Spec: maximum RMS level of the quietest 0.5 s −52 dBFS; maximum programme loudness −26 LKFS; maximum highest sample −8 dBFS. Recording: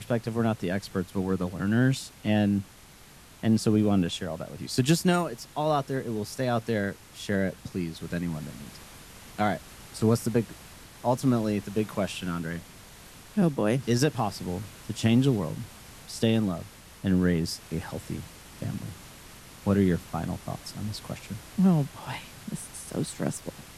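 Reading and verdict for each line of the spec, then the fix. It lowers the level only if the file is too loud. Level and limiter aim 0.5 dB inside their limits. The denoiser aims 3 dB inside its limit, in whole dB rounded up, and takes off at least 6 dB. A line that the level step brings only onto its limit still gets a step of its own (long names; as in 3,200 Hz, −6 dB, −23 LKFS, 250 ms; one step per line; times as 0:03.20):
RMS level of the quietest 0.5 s −51 dBFS: out of spec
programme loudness −28.5 LKFS: in spec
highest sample −10.5 dBFS: in spec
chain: broadband denoise 6 dB, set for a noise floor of −51 dBFS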